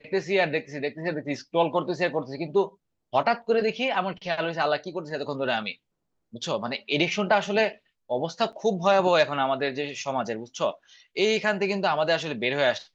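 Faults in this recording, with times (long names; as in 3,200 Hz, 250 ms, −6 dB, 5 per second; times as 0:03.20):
0:08.52–0:08.53: drop-out 7.9 ms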